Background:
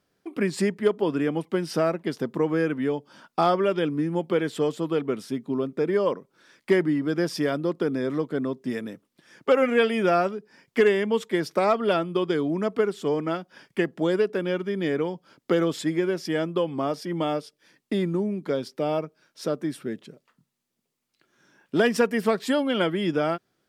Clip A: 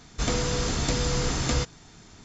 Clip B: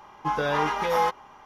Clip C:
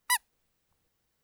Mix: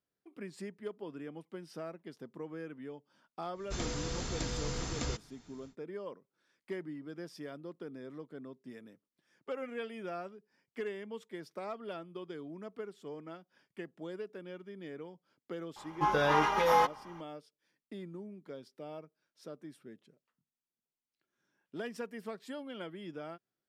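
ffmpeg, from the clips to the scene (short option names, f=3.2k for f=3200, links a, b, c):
-filter_complex "[0:a]volume=-19.5dB[a];[1:a]atrim=end=2.24,asetpts=PTS-STARTPTS,volume=-11dB,afade=t=in:d=0.1,afade=t=out:st=2.14:d=0.1,adelay=3520[b];[2:a]atrim=end=1.45,asetpts=PTS-STARTPTS,volume=-2.5dB,afade=t=in:d=0.004:c=hsin,afade=t=out:st=1.446:d=0.004:c=hsin,adelay=15760[c];[a][b][c]amix=inputs=3:normalize=0"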